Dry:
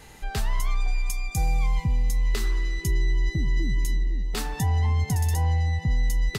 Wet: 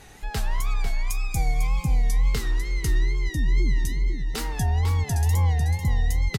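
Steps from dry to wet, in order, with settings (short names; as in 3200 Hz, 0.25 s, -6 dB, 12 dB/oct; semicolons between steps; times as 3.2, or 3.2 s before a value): wow and flutter 130 cents; echo 0.498 s -8 dB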